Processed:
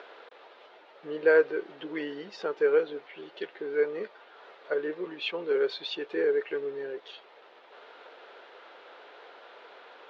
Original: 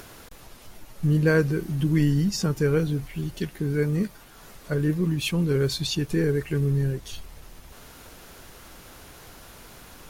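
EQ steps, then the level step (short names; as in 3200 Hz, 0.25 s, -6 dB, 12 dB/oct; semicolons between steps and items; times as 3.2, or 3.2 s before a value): elliptic band-pass 440–3700 Hz, stop band 60 dB; high shelf 2100 Hz -8.5 dB; notch 1100 Hz, Q 17; +3.0 dB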